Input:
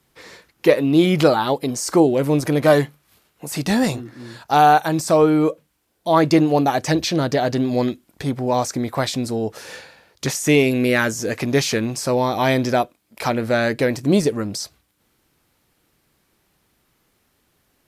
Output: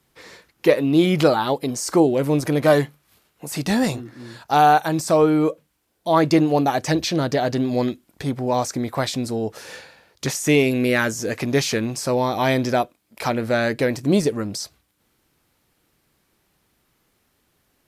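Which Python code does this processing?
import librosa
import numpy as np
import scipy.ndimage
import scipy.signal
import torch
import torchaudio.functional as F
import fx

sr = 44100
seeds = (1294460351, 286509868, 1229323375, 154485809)

y = fx.dmg_crackle(x, sr, seeds[0], per_s=310.0, level_db=-41.0, at=(10.3, 10.7), fade=0.02)
y = y * 10.0 ** (-1.5 / 20.0)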